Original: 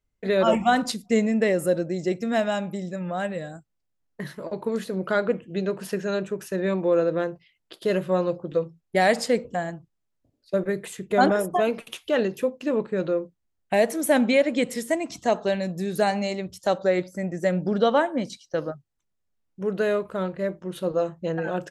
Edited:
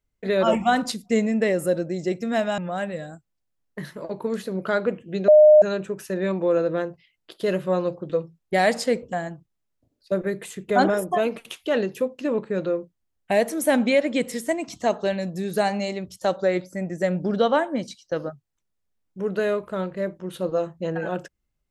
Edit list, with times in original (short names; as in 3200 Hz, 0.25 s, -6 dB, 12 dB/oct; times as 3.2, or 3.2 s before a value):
2.58–3 cut
5.7–6.04 bleep 609 Hz -8 dBFS